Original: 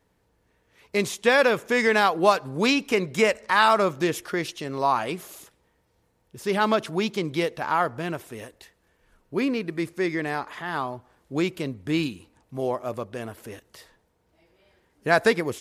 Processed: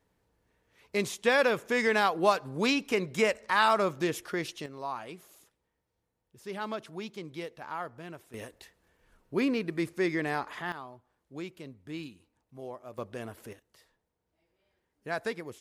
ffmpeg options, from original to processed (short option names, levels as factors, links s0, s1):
-af "asetnsamples=n=441:p=0,asendcmd='4.66 volume volume -14dB;8.34 volume volume -3dB;10.72 volume volume -15dB;12.98 volume volume -5.5dB;13.53 volume volume -14dB',volume=0.531"